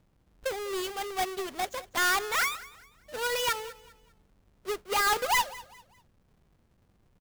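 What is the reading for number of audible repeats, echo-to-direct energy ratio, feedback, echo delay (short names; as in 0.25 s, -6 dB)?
2, -18.5 dB, 33%, 0.199 s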